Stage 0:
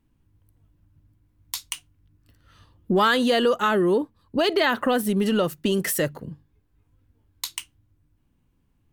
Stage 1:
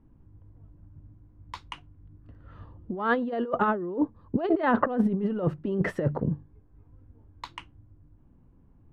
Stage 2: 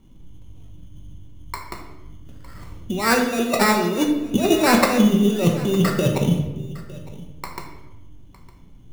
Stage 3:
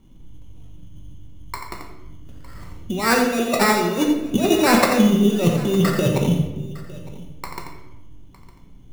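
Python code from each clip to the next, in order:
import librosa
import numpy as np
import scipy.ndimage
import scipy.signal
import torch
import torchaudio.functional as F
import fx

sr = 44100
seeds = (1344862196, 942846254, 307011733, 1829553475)

y1 = scipy.signal.sosfilt(scipy.signal.butter(2, 1000.0, 'lowpass', fs=sr, output='sos'), x)
y1 = fx.over_compress(y1, sr, threshold_db=-27.0, ratio=-0.5)
y1 = y1 * librosa.db_to_amplitude(3.0)
y2 = fx.sample_hold(y1, sr, seeds[0], rate_hz=3200.0, jitter_pct=0)
y2 = y2 + 10.0 ** (-20.0 / 20.0) * np.pad(y2, (int(908 * sr / 1000.0), 0))[:len(y2)]
y2 = fx.room_shoebox(y2, sr, seeds[1], volume_m3=470.0, walls='mixed', distance_m=1.1)
y2 = y2 * librosa.db_to_amplitude(5.5)
y3 = y2 + 10.0 ** (-8.5 / 20.0) * np.pad(y2, (int(87 * sr / 1000.0), 0))[:len(y2)]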